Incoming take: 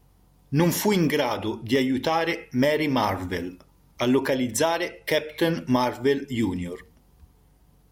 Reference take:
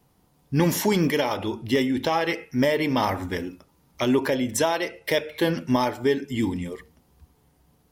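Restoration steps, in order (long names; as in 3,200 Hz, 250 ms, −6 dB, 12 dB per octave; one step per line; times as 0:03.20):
hum removal 46.8 Hz, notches 4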